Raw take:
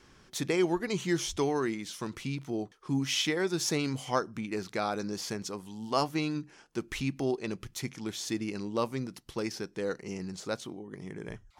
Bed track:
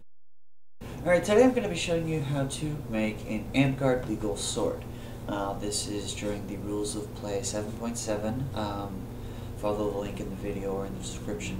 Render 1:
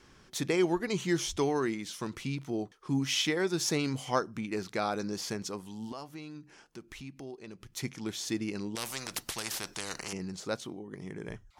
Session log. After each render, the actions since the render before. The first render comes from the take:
0:05.92–0:07.77: downward compressor 2 to 1, threshold −51 dBFS
0:08.75–0:10.13: every bin compressed towards the loudest bin 4 to 1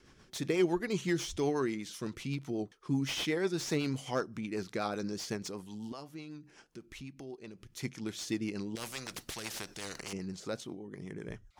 rotating-speaker cabinet horn 8 Hz
slew-rate limiting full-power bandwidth 78 Hz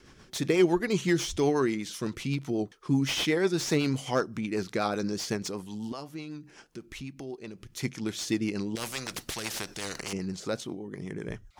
level +6 dB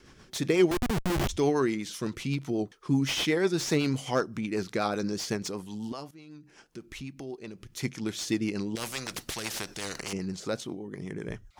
0:00.71–0:01.29: comparator with hysteresis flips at −27 dBFS
0:06.11–0:06.85: fade in, from −14 dB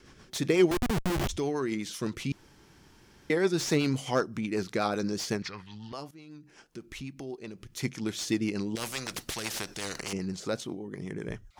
0:01.09–0:01.72: downward compressor 2.5 to 1, threshold −28 dBFS
0:02.32–0:03.30: fill with room tone
0:05.42–0:05.93: drawn EQ curve 110 Hz 0 dB, 280 Hz −13 dB, 620 Hz −10 dB, 1,100 Hz +1 dB, 1,900 Hz +13 dB, 3,100 Hz +1 dB, 4,600 Hz +1 dB, 7,800 Hz −19 dB, 11,000 Hz −24 dB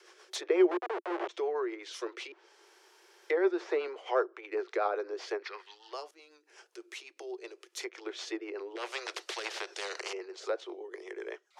treble cut that deepens with the level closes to 1,600 Hz, closed at −27 dBFS
Butterworth high-pass 350 Hz 96 dB per octave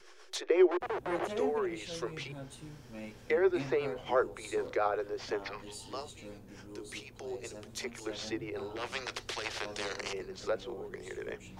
mix in bed track −16 dB

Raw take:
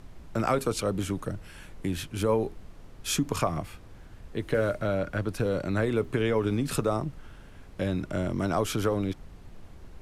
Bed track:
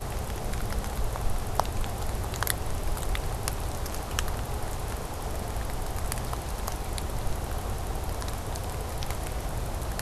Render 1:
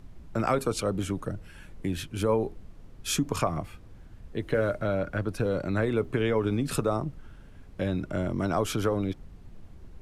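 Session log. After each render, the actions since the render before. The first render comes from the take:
broadband denoise 6 dB, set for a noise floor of −48 dBFS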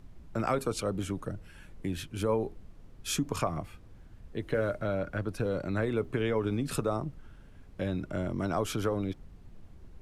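level −3.5 dB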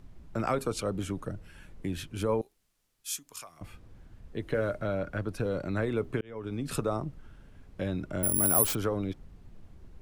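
0:02.41–0:03.61: first-order pre-emphasis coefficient 0.97
0:06.21–0:06.75: fade in
0:08.23–0:08.75: bad sample-rate conversion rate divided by 4×, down none, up zero stuff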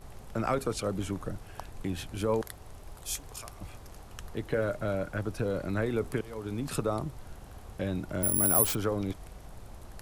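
mix in bed track −16.5 dB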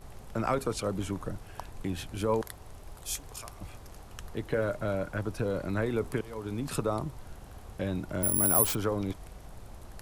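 dynamic equaliser 980 Hz, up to +4 dB, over −56 dBFS, Q 6.2

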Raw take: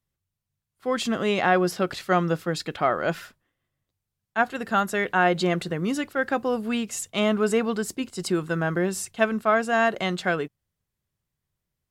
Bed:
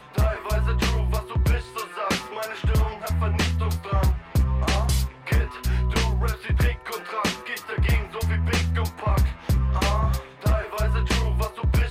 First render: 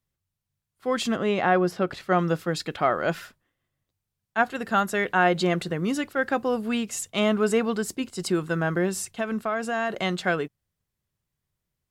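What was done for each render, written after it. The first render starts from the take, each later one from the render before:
0:01.16–0:02.19: high-shelf EQ 3,200 Hz −10 dB
0:09.03–0:09.90: downward compressor 4 to 1, threshold −23 dBFS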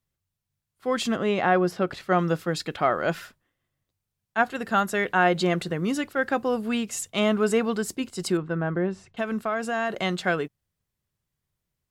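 0:08.37–0:09.17: head-to-tape spacing loss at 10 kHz 32 dB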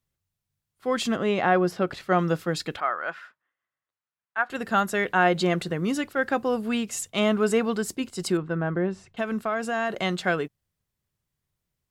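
0:02.80–0:04.50: resonant band-pass 1,400 Hz, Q 1.5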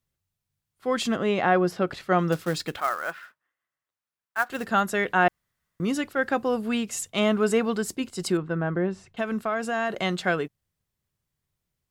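0:02.32–0:04.66: floating-point word with a short mantissa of 2 bits
0:05.28–0:05.80: fill with room tone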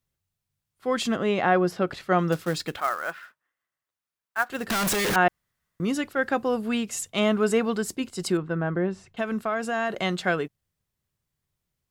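0:04.70–0:05.16: sign of each sample alone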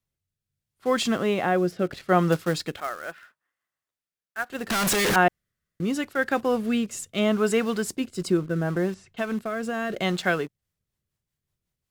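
in parallel at −9 dB: bit reduction 6 bits
on the sum: rotating-speaker cabinet horn 0.75 Hz, later 5.5 Hz, at 0:10.15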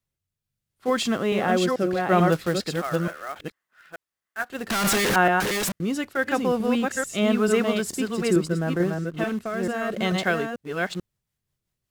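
delay that plays each chunk backwards 440 ms, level −3 dB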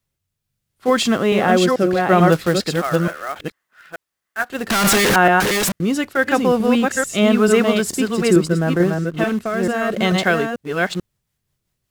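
level +7 dB
brickwall limiter −3 dBFS, peak gain reduction 2.5 dB

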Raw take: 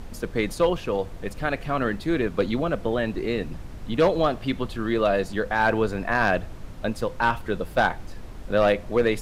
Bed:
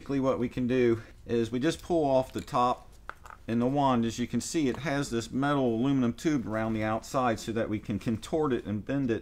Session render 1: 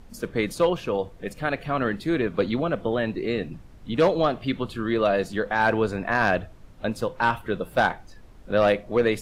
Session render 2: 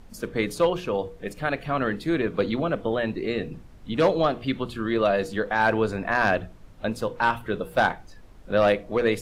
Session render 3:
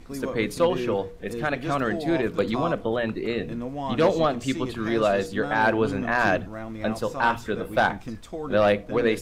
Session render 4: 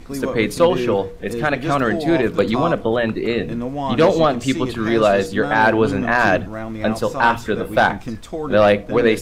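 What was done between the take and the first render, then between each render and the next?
noise reduction from a noise print 10 dB
mains-hum notches 60/120/180/240/300/360/420/480 Hz
mix in bed −5.5 dB
level +7 dB; brickwall limiter −3 dBFS, peak gain reduction 2 dB

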